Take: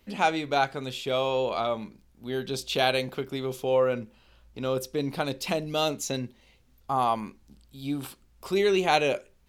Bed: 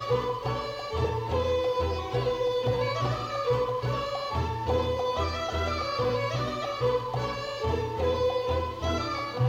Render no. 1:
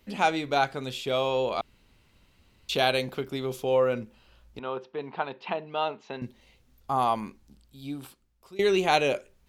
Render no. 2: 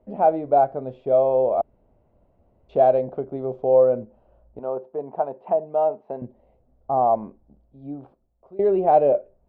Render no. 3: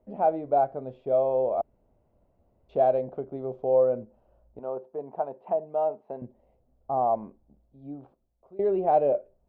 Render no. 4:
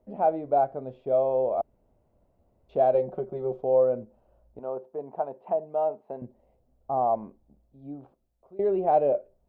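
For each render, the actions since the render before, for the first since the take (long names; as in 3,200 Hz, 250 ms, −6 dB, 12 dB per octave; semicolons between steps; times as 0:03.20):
0:01.61–0:02.69: fill with room tone; 0:04.59–0:06.22: loudspeaker in its box 280–2,800 Hz, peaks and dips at 290 Hz −10 dB, 540 Hz −8 dB, 910 Hz +7 dB, 2,200 Hz −5 dB; 0:07.27–0:08.59: fade out, to −21.5 dB
low-pass with resonance 650 Hz, resonance Q 4.2
level −5.5 dB
0:02.94–0:03.61: comb filter 5.4 ms, depth 87%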